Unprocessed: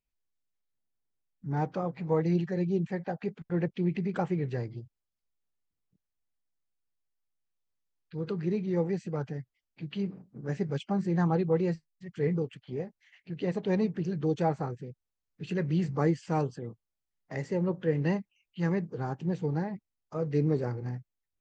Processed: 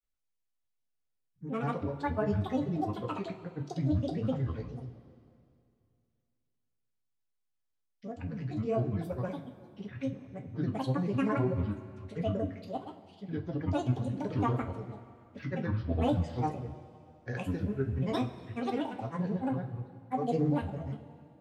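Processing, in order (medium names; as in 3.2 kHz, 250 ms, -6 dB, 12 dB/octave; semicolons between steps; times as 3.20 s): granulator, grains 20 per s, pitch spread up and down by 12 st; two-slope reverb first 0.22 s, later 2.5 s, from -18 dB, DRR 2 dB; trim -3.5 dB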